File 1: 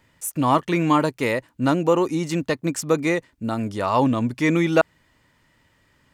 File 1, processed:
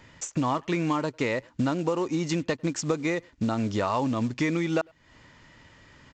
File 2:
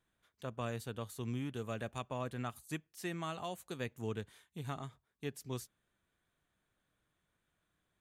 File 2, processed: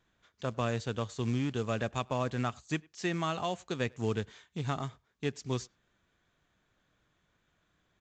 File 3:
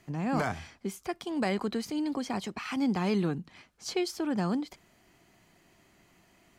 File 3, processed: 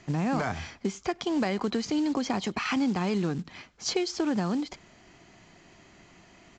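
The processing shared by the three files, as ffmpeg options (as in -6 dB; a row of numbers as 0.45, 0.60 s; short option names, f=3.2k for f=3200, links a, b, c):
-filter_complex "[0:a]acompressor=threshold=-32dB:ratio=8,aresample=16000,acrusher=bits=6:mode=log:mix=0:aa=0.000001,aresample=44100,asplit=2[a][b];[b]adelay=100,highpass=300,lowpass=3.4k,asoftclip=type=hard:threshold=-31.5dB,volume=-27dB[c];[a][c]amix=inputs=2:normalize=0,volume=8dB"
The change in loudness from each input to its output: -6.0, +7.5, +2.5 LU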